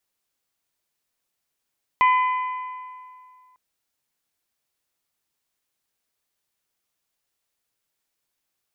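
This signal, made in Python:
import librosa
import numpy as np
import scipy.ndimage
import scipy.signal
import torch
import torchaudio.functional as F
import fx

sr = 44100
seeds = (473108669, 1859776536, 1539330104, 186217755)

y = fx.strike_metal(sr, length_s=1.55, level_db=-13, body='bell', hz=1010.0, decay_s=2.23, tilt_db=8, modes=4)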